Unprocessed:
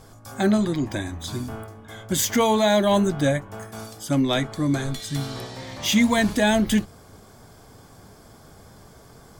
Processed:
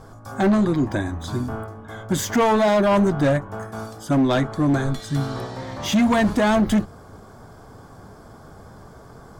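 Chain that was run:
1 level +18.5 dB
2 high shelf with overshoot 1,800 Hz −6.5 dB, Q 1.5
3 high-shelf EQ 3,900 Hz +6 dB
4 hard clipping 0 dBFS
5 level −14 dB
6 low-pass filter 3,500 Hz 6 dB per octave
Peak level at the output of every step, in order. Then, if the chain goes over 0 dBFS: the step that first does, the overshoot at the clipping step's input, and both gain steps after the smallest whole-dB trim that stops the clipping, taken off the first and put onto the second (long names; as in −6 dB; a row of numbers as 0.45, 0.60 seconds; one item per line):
+9.5, +9.5, +10.0, 0.0, −14.0, −14.0 dBFS
step 1, 10.0 dB
step 1 +8.5 dB, step 5 −4 dB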